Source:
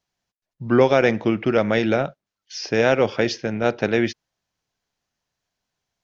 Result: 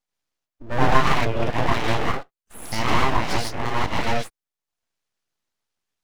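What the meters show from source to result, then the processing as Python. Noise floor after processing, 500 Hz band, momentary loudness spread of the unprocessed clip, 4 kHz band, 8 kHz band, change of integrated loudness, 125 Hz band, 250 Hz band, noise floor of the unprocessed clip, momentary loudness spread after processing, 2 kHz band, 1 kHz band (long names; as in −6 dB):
below −85 dBFS, −8.5 dB, 11 LU, +2.0 dB, can't be measured, −3.0 dB, +2.0 dB, −6.5 dB, below −85 dBFS, 12 LU, −0.5 dB, +5.0 dB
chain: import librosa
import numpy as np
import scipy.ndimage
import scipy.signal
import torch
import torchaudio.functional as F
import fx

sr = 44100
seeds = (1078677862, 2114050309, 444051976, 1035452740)

y = fx.dereverb_blind(x, sr, rt60_s=0.63)
y = fx.rev_gated(y, sr, seeds[0], gate_ms=180, shape='rising', drr_db=-5.5)
y = np.abs(y)
y = y * librosa.db_to_amplitude(-5.0)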